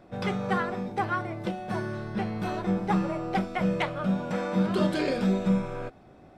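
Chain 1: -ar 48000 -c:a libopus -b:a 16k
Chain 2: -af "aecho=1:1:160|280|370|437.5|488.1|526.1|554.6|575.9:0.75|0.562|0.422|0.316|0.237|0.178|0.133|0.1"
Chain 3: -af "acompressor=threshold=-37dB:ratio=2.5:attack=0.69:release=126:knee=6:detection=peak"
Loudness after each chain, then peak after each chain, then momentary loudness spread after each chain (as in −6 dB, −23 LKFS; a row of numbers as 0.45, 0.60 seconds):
−28.5, −25.5, −38.5 LKFS; −13.5, −10.5, −26.5 dBFS; 7, 7, 4 LU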